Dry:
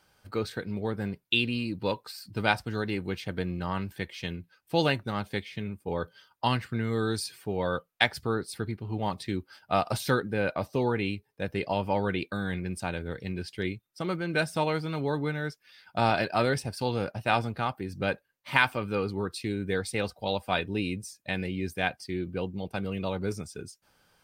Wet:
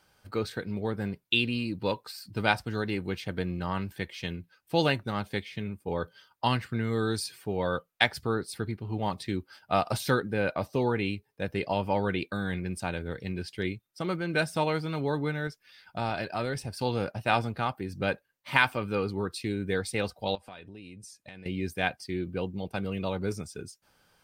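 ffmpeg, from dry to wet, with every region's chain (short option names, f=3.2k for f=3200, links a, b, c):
-filter_complex "[0:a]asettb=1/sr,asplit=3[a][b][c];[a]atrim=end=15.474[d];[b]atrim=start=15.47:end=16.79,asetpts=PTS-STARTPTS,afade=t=in:d=0.004:c=qsin,afade=t=out:st=1.316:d=0.004:c=qsin,lowshelf=f=61:g=10,acompressor=threshold=-38dB:ratio=1.5:attack=3.2:release=140:knee=1:detection=peak[e];[c]atrim=start=16.786[f];[d][e]acrossfade=d=0.004:c1=hsin:c2=qsin[g];[g][f]acrossfade=d=0.004:c1=qsin:c2=hsin,asettb=1/sr,asplit=3[h][i][j];[h]atrim=end=20.354[k];[i]atrim=start=20.35:end=21.46,asetpts=PTS-STARTPTS,afade=t=in:d=0.004:c=qsin,afade=t=out:st=1.106:d=0.004:c=qsin,lowpass=f=12k:w=0.5412,lowpass=f=12k:w=1.3066,acompressor=threshold=-43dB:ratio=6:attack=3.2:release=140:knee=1:detection=peak[l];[j]atrim=start=21.456[m];[k][l]acrossfade=d=0.004:c1=hsin:c2=qsin[n];[n][m]acrossfade=d=0.004:c1=qsin:c2=hsin"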